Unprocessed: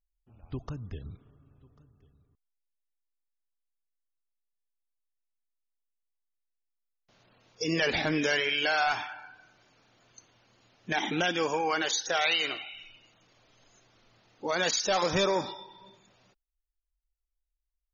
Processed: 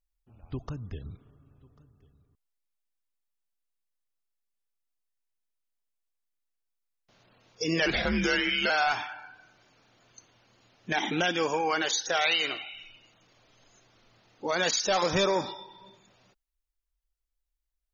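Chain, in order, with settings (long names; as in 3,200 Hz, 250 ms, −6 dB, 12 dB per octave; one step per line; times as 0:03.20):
0:07.86–0:08.70: frequency shifter −98 Hz
level +1 dB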